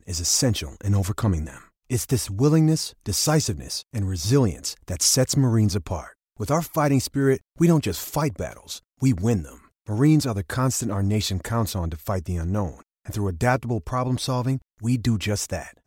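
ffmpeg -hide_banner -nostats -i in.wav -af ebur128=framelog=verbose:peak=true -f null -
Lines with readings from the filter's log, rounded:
Integrated loudness:
  I:         -23.4 LUFS
  Threshold: -33.7 LUFS
Loudness range:
  LRA:         4.0 LU
  Threshold: -43.6 LUFS
  LRA low:   -26.0 LUFS
  LRA high:  -22.0 LUFS
True peak:
  Peak:       -7.0 dBFS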